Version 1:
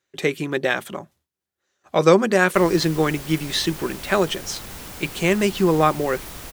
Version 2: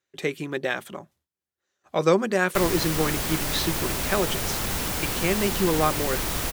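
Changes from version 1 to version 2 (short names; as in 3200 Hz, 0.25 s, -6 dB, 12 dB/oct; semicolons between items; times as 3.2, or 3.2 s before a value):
speech -5.5 dB; background +9.0 dB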